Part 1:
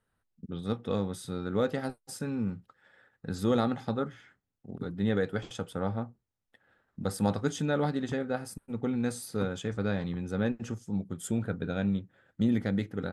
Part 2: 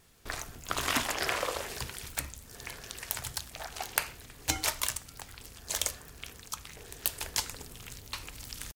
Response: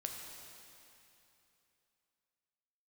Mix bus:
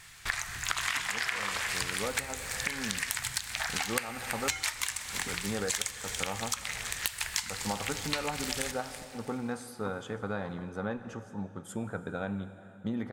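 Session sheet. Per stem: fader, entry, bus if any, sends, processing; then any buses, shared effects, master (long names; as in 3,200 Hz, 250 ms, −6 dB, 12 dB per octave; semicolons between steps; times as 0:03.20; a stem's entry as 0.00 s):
−10.0 dB, 0.45 s, send −4.5 dB, no echo send, no processing
0.0 dB, 0.00 s, send −6 dB, echo send −16 dB, graphic EQ with 10 bands 125 Hz +5 dB, 250 Hz −7 dB, 500 Hz −11 dB, 1,000 Hz −7 dB, 2,000 Hz +11 dB, 4,000 Hz +5 dB, 8,000 Hz +9 dB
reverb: on, RT60 3.0 s, pre-delay 5 ms
echo: repeating echo 331 ms, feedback 42%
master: parametric band 980 Hz +14 dB 1.5 octaves; downward compressor 12 to 1, threshold −28 dBFS, peak gain reduction 20 dB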